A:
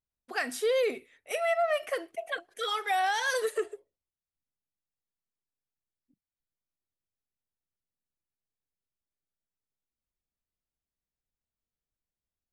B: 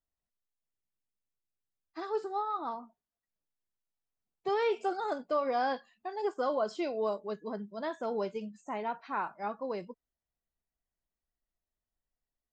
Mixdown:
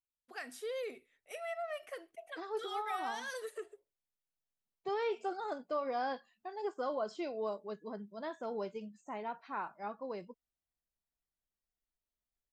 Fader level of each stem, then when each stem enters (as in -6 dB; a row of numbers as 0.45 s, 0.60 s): -13.0 dB, -5.5 dB; 0.00 s, 0.40 s